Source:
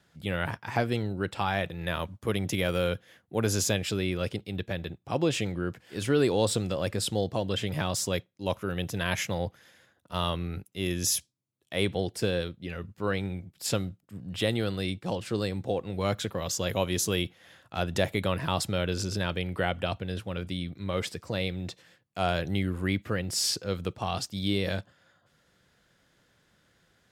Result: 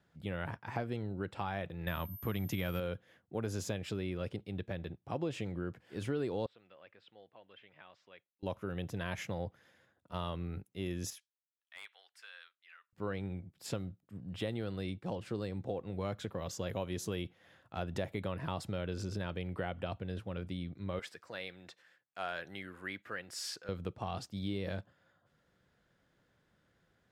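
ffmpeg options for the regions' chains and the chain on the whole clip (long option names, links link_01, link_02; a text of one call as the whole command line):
ffmpeg -i in.wav -filter_complex "[0:a]asettb=1/sr,asplit=3[link_01][link_02][link_03];[link_01]atrim=end=1.874[link_04];[link_02]atrim=start=1.87:end=2.8,asetpts=PTS-STARTPTS,afade=type=in:duration=0.004:curve=qsin,afade=type=out:start_time=0.926:duration=0.004:curve=qsin,equalizer=frequency=470:width=1.2:gain=-7,acontrast=53,aeval=exprs='val(0)+0.0251*sin(2*PI*13000*n/s)':channel_layout=same[link_05];[link_03]atrim=start=2.796[link_06];[link_04][link_05]acrossfade=duration=0.004:curve1=hsin:curve2=qsin[link_07];[link_07][link_06]acrossfade=duration=0.004:curve1=qsin:curve2=hsin,asettb=1/sr,asplit=3[link_08][link_09][link_10];[link_08]atrim=end=6.464[link_11];[link_09]atrim=start=6.46:end=8.43,asetpts=PTS-STARTPTS,afade=type=in:duration=0.004:curve=qsin,afade=type=out:start_time=1.966:duration=0.004:curve=qsin,lowpass=frequency=2600:width=0.5412,lowpass=frequency=2600:width=1.3066,aderivative[link_12];[link_10]atrim=start=8.426[link_13];[link_11][link_12]acrossfade=duration=0.004:curve1=hsin:curve2=qsin[link_14];[link_14][link_13]acrossfade=duration=0.004:curve1=qsin:curve2=hsin,asettb=1/sr,asplit=3[link_15][link_16][link_17];[link_15]atrim=end=11.104[link_18];[link_16]atrim=start=11.1:end=12.93,asetpts=PTS-STARTPTS,afade=type=in:duration=0.004:curve=qsin,afade=type=out:start_time=1.826:duration=0.004:curve=qsin,highpass=frequency=1400:width=0.5412,highpass=frequency=1400:width=1.3066,highshelf=frequency=2400:gain=-11,aeval=exprs='0.0376*(abs(mod(val(0)/0.0376+3,4)-2)-1)':channel_layout=same[link_19];[link_17]atrim=start=12.926[link_20];[link_18][link_19]acrossfade=duration=0.004:curve1=hsin:curve2=qsin[link_21];[link_21][link_20]acrossfade=duration=0.004:curve1=qsin:curve2=hsin,asettb=1/sr,asplit=3[link_22][link_23][link_24];[link_22]atrim=end=20.994[link_25];[link_23]atrim=start=20.99:end=23.69,asetpts=PTS-STARTPTS,afade=type=in:duration=0.004:curve=qsin,afade=type=out:start_time=2.696:duration=0.004:curve=qsin,highpass=frequency=1100:poles=1,equalizer=frequency=1600:width_type=o:width=0.58:gain=6.5[link_26];[link_24]atrim=start=23.686[link_27];[link_25][link_26]acrossfade=duration=0.004:curve1=hsin:curve2=qsin[link_28];[link_28][link_27]acrossfade=duration=0.004:curve1=qsin:curve2=hsin,highshelf=frequency=2700:gain=-10.5,acompressor=threshold=-29dB:ratio=2.5,volume=-5dB" out.wav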